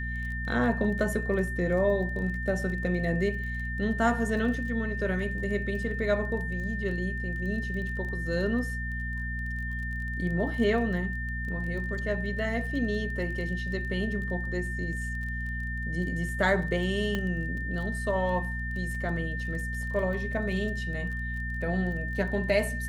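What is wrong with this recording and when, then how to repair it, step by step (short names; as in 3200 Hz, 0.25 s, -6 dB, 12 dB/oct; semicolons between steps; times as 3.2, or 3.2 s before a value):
crackle 22/s -37 dBFS
hum 60 Hz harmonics 4 -34 dBFS
tone 1800 Hz -35 dBFS
17.15 pop -17 dBFS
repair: de-click; notch 1800 Hz, Q 30; de-hum 60 Hz, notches 4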